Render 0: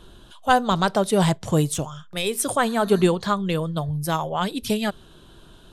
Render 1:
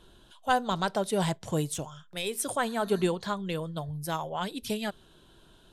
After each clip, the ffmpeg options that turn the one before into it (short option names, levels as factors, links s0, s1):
-af "lowshelf=f=250:g=-4,bandreject=f=1200:w=13,volume=0.447"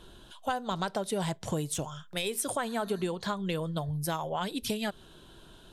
-af "acompressor=threshold=0.0224:ratio=6,volume=1.68"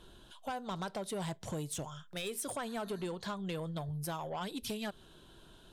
-af "asoftclip=type=tanh:threshold=0.0447,volume=0.596"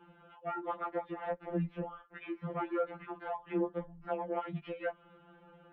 -af "highpass=f=260:t=q:w=0.5412,highpass=f=260:t=q:w=1.307,lowpass=f=2300:t=q:w=0.5176,lowpass=f=2300:t=q:w=0.7071,lowpass=f=2300:t=q:w=1.932,afreqshift=-130,afftfilt=real='re*2.83*eq(mod(b,8),0)':imag='im*2.83*eq(mod(b,8),0)':win_size=2048:overlap=0.75,volume=2.24"